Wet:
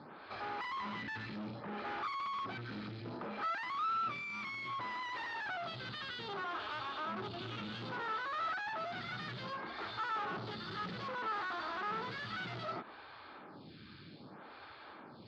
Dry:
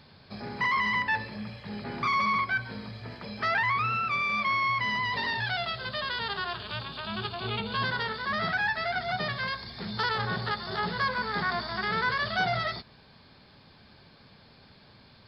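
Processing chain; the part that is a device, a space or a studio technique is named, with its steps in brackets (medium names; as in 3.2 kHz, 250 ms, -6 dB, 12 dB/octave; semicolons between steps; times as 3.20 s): vibe pedal into a guitar amplifier (lamp-driven phase shifter 0.63 Hz; valve stage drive 48 dB, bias 0.4; cabinet simulation 110–4000 Hz, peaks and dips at 320 Hz +9 dB, 840 Hz +4 dB, 1.3 kHz +9 dB); trim +6 dB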